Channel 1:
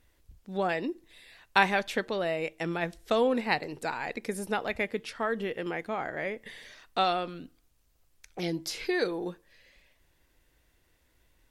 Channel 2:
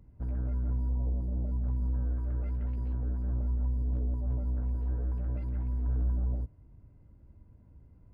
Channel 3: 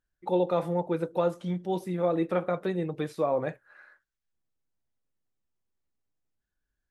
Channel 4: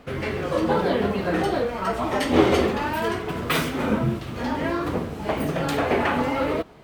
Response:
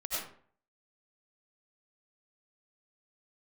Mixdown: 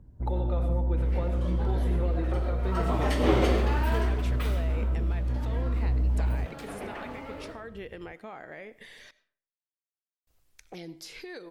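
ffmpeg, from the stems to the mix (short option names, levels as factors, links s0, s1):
-filter_complex "[0:a]acompressor=threshold=0.0251:ratio=3,alimiter=level_in=2.37:limit=0.0631:level=0:latency=1:release=481,volume=0.422,adelay=2350,volume=0.891,asplit=3[s0][s1][s2];[s0]atrim=end=9.11,asetpts=PTS-STARTPTS,afade=t=out:st=9.106:d=0.004:c=hsin[s3];[s1]atrim=start=9.11:end=10.27,asetpts=PTS-STARTPTS,volume=0[s4];[s2]atrim=start=10.27,asetpts=PTS-STARTPTS,afade=t=in:d=0.004:c=hsin[s5];[s3][s4][s5]concat=n=3:v=0:a=1,asplit=2[s6][s7];[s7]volume=0.0841[s8];[1:a]lowpass=1100,acontrast=81,volume=0.668[s9];[2:a]acompressor=threshold=0.02:ratio=12,volume=0.944,asplit=2[s10][s11];[s11]volume=0.473[s12];[3:a]adelay=900,volume=0.398,afade=t=in:st=2.58:d=0.25:silence=0.266073,afade=t=out:st=3.89:d=0.6:silence=0.281838,asplit=2[s13][s14];[s14]volume=0.282[s15];[4:a]atrim=start_sample=2205[s16];[s8][s12][s15]amix=inputs=3:normalize=0[s17];[s17][s16]afir=irnorm=-1:irlink=0[s18];[s6][s9][s10][s13][s18]amix=inputs=5:normalize=0"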